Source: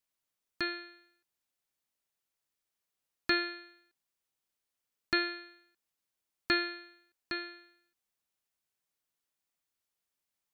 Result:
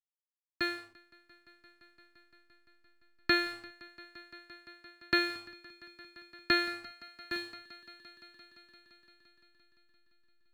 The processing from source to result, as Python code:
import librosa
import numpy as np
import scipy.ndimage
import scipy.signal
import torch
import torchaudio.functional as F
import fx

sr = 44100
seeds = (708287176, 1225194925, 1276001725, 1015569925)

p1 = fx.backlash(x, sr, play_db=-45.0)
p2 = p1 + fx.echo_swell(p1, sr, ms=172, loudest=5, wet_db=-17.5, dry=0)
p3 = fx.band_widen(p2, sr, depth_pct=70)
y = F.gain(torch.from_numpy(p3), -4.5).numpy()